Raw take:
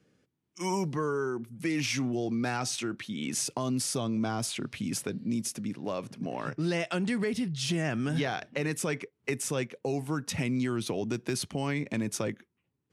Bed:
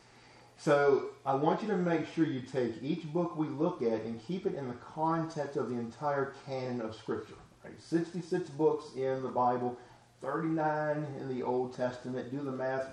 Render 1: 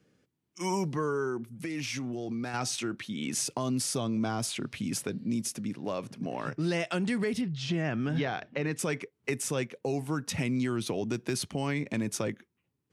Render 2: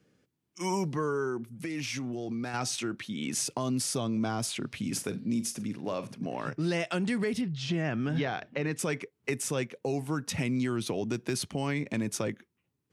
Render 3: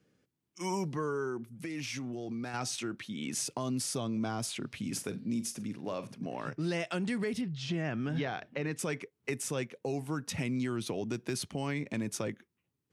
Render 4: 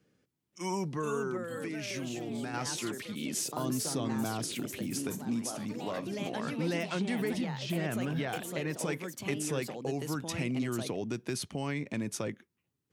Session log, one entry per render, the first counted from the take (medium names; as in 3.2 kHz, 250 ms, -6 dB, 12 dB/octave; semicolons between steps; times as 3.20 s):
1.51–2.54 s: compression, threshold -31 dBFS; 7.41–8.79 s: distance through air 140 m
4.80–6.16 s: flutter echo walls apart 8.1 m, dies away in 0.23 s
trim -3.5 dB
ever faster or slower copies 527 ms, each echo +3 st, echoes 3, each echo -6 dB